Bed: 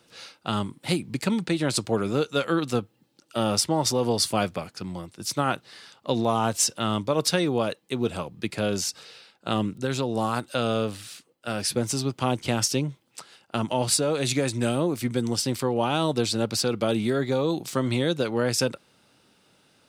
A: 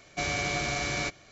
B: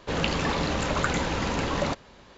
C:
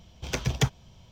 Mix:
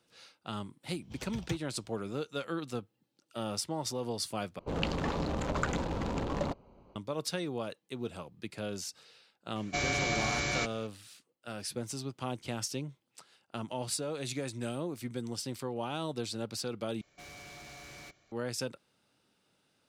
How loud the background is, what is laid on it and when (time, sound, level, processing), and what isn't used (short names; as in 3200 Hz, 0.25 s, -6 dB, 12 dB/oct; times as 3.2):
bed -12 dB
0.88 add C -14.5 dB
4.59 replace with B -5 dB + Wiener smoothing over 25 samples
9.56 add A -1.5 dB
17.01 replace with A -13.5 dB + overloaded stage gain 34 dB